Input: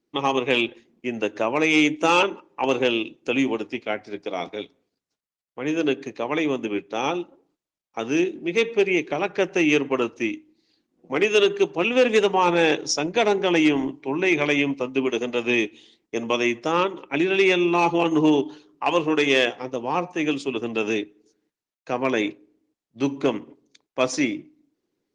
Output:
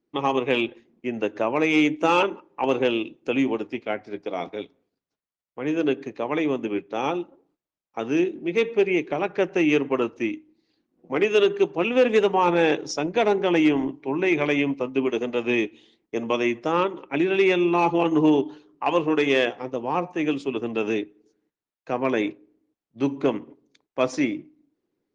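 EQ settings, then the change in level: high shelf 3400 Hz -11 dB; 0.0 dB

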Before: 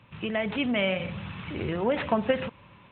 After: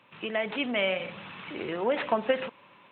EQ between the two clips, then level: HPF 310 Hz 12 dB/oct; 0.0 dB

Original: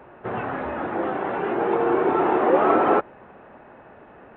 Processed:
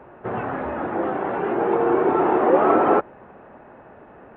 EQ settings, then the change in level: high shelf 2900 Hz -10.5 dB; +2.0 dB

